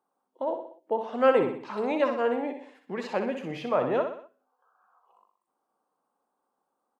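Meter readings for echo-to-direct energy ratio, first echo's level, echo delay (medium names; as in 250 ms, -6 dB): -6.0 dB, -7.0 dB, 62 ms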